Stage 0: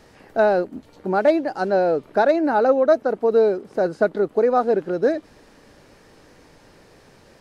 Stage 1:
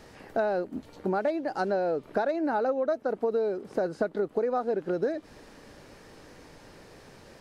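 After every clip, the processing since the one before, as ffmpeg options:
ffmpeg -i in.wav -af "acompressor=threshold=-25dB:ratio=6" out.wav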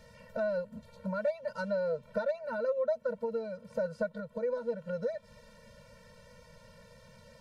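ffmpeg -i in.wav -af "afftfilt=real='re*eq(mod(floor(b*sr/1024/220),2),0)':imag='im*eq(mod(floor(b*sr/1024/220),2),0)':win_size=1024:overlap=0.75,volume=-2.5dB" out.wav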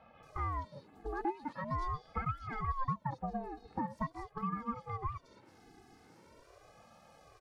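ffmpeg -i in.wav -filter_complex "[0:a]acrossover=split=2900[link_01][link_02];[link_02]adelay=230[link_03];[link_01][link_03]amix=inputs=2:normalize=0,aeval=exprs='val(0)*sin(2*PI*470*n/s+470*0.5/0.43*sin(2*PI*0.43*n/s))':channel_layout=same,volume=-1.5dB" out.wav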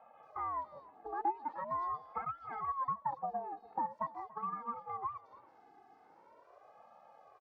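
ffmpeg -i in.wav -filter_complex "[0:a]bandpass=frequency=840:width_type=q:width=1.9:csg=0,asplit=2[link_01][link_02];[link_02]adelay=285.7,volume=-20dB,highshelf=frequency=4000:gain=-6.43[link_03];[link_01][link_03]amix=inputs=2:normalize=0,volume=4.5dB" out.wav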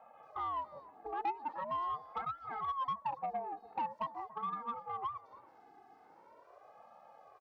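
ffmpeg -i in.wav -af "asoftclip=type=tanh:threshold=-30.5dB,volume=1.5dB" out.wav

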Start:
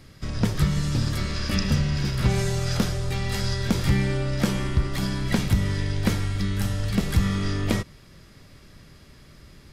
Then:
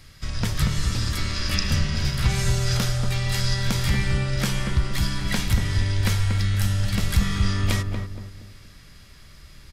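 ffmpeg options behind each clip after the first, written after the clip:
ffmpeg -i in.wav -filter_complex "[0:a]equalizer=frequency=310:width=0.4:gain=-12,asplit=2[link_01][link_02];[link_02]adelay=235,lowpass=frequency=940:poles=1,volume=-3.5dB,asplit=2[link_03][link_04];[link_04]adelay=235,lowpass=frequency=940:poles=1,volume=0.42,asplit=2[link_05][link_06];[link_06]adelay=235,lowpass=frequency=940:poles=1,volume=0.42,asplit=2[link_07][link_08];[link_08]adelay=235,lowpass=frequency=940:poles=1,volume=0.42,asplit=2[link_09][link_10];[link_10]adelay=235,lowpass=frequency=940:poles=1,volume=0.42[link_11];[link_03][link_05][link_07][link_09][link_11]amix=inputs=5:normalize=0[link_12];[link_01][link_12]amix=inputs=2:normalize=0,volume=4.5dB" out.wav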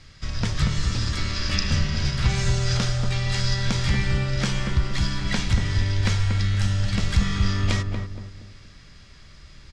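ffmpeg -i in.wav -af "lowpass=frequency=7300:width=0.5412,lowpass=frequency=7300:width=1.3066" out.wav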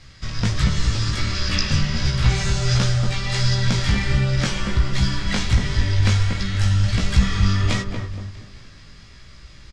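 ffmpeg -i in.wav -filter_complex "[0:a]flanger=delay=15.5:depth=4.2:speed=1.4,asplit=6[link_01][link_02][link_03][link_04][link_05][link_06];[link_02]adelay=214,afreqshift=-31,volume=-21dB[link_07];[link_03]adelay=428,afreqshift=-62,volume=-24.9dB[link_08];[link_04]adelay=642,afreqshift=-93,volume=-28.8dB[link_09];[link_05]adelay=856,afreqshift=-124,volume=-32.6dB[link_10];[link_06]adelay=1070,afreqshift=-155,volume=-36.5dB[link_11];[link_01][link_07][link_08][link_09][link_10][link_11]amix=inputs=6:normalize=0,volume=6dB" out.wav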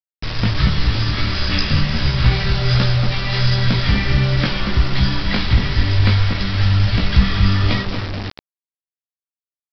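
ffmpeg -i in.wav -af "equalizer=frequency=280:width_type=o:width=0.31:gain=4.5,aresample=11025,acrusher=bits=4:mix=0:aa=0.000001,aresample=44100,volume=3dB" out.wav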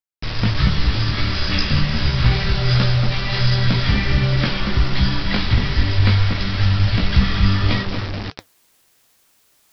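ffmpeg -i in.wav -af "areverse,acompressor=mode=upward:threshold=-27dB:ratio=2.5,areverse,flanger=delay=3.2:depth=8:regen=-78:speed=1.2:shape=triangular,volume=3.5dB" out.wav

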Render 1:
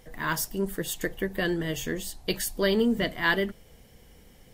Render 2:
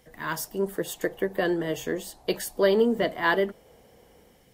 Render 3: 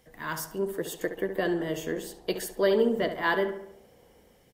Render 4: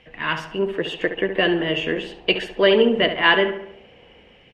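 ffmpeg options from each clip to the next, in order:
ffmpeg -i in.wav -filter_complex "[0:a]acrossover=split=370|1100[link_01][link_02][link_03];[link_02]dynaudnorm=framelen=170:gausssize=5:maxgain=11dB[link_04];[link_01][link_04][link_03]amix=inputs=3:normalize=0,highpass=frequency=85:poles=1,volume=-3.5dB" out.wav
ffmpeg -i in.wav -filter_complex "[0:a]asplit=2[link_01][link_02];[link_02]adelay=69,lowpass=frequency=2700:poles=1,volume=-9dB,asplit=2[link_03][link_04];[link_04]adelay=69,lowpass=frequency=2700:poles=1,volume=0.54,asplit=2[link_05][link_06];[link_06]adelay=69,lowpass=frequency=2700:poles=1,volume=0.54,asplit=2[link_07][link_08];[link_08]adelay=69,lowpass=frequency=2700:poles=1,volume=0.54,asplit=2[link_09][link_10];[link_10]adelay=69,lowpass=frequency=2700:poles=1,volume=0.54,asplit=2[link_11][link_12];[link_12]adelay=69,lowpass=frequency=2700:poles=1,volume=0.54[link_13];[link_01][link_03][link_05][link_07][link_09][link_11][link_13]amix=inputs=7:normalize=0,volume=-3dB" out.wav
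ffmpeg -i in.wav -af "lowpass=frequency=2700:width_type=q:width=6.9,volume=7dB" out.wav

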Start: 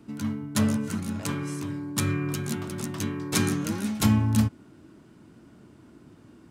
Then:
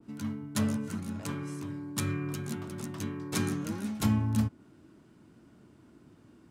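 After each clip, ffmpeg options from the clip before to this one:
ffmpeg -i in.wav -af "adynamicequalizer=threshold=0.00631:dfrequency=1700:dqfactor=0.7:tfrequency=1700:tqfactor=0.7:attack=5:release=100:ratio=0.375:range=2:mode=cutabove:tftype=highshelf,volume=-5.5dB" out.wav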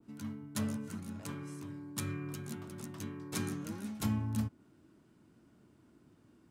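ffmpeg -i in.wav -af "highshelf=frequency=10000:gain=4.5,volume=-6.5dB" out.wav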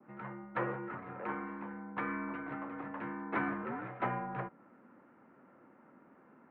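ffmpeg -i in.wav -af "highpass=frequency=410:width_type=q:width=0.5412,highpass=frequency=410:width_type=q:width=1.307,lowpass=frequency=2100:width_type=q:width=0.5176,lowpass=frequency=2100:width_type=q:width=0.7071,lowpass=frequency=2100:width_type=q:width=1.932,afreqshift=-88,volume=12dB" out.wav

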